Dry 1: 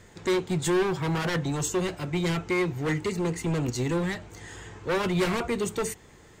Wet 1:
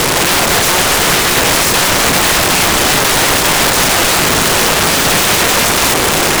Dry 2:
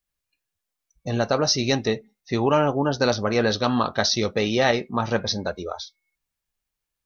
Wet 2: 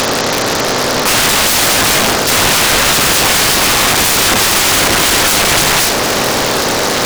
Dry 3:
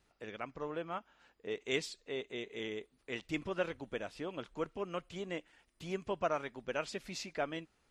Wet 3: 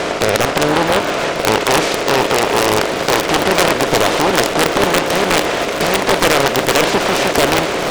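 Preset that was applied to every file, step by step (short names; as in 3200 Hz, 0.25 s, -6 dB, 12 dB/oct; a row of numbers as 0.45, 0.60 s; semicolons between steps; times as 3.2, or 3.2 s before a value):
per-bin compression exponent 0.2; dynamic EQ 4200 Hz, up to -4 dB, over -30 dBFS, Q 0.94; in parallel at 0 dB: limiter -8 dBFS; on the sum: wrapped overs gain 12 dB; on a send: swung echo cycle 0.782 s, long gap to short 1.5:1, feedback 60%, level -13 dB; on the sum: Doppler distortion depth 0.78 ms; normalise peaks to -2 dBFS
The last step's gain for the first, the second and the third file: +6.0, +6.5, +8.5 dB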